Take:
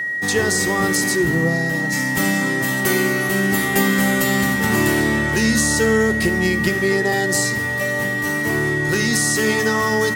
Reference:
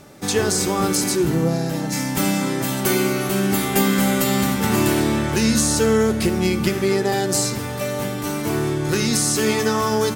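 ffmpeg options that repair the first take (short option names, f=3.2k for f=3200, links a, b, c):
-af "bandreject=f=1.9k:w=30"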